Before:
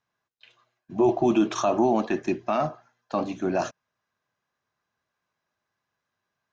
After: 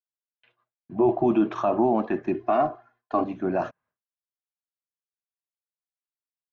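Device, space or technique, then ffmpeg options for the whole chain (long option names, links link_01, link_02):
hearing-loss simulation: -filter_complex "[0:a]asettb=1/sr,asplit=3[link_01][link_02][link_03];[link_01]atrim=end=2.344[link_04];[link_02]atrim=start=2.34:end=3.24,asetpts=PTS-STARTPTS,afade=type=in:duration=0.004:curve=qsin,afade=type=out:start_time=0.896:duration=0.004:curve=qsin,aecho=1:1:2.8:1,atrim=end_sample=39690[link_05];[link_03]atrim=start=3.236[link_06];[link_04][link_05]acrossfade=duration=0.004:curve1=hsin:curve2=qsin[link_07];[link_07][link_06]acrossfade=duration=0.004:curve1=qsin:curve2=hsin,lowpass=1900,agate=range=-33dB:threshold=-57dB:ratio=3:detection=peak"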